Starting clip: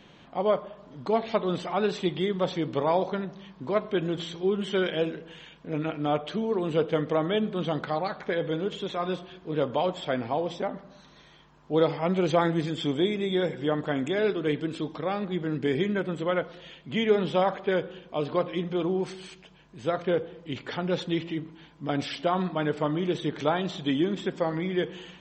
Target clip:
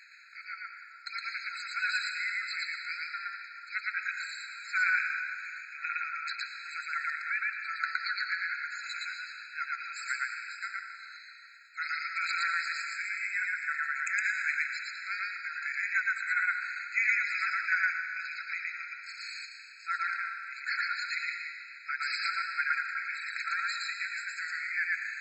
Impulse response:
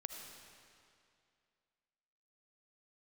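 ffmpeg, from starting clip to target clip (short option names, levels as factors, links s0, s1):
-filter_complex "[0:a]tremolo=f=2.7:d=0.53,asplit=2[s0][s1];[1:a]atrim=start_sample=2205,adelay=115[s2];[s1][s2]afir=irnorm=-1:irlink=0,volume=1.58[s3];[s0][s3]amix=inputs=2:normalize=0,afftfilt=real='re*eq(mod(floor(b*sr/1024/1300),2),1)':imag='im*eq(mod(floor(b*sr/1024/1300),2),1)':win_size=1024:overlap=0.75,volume=2.51"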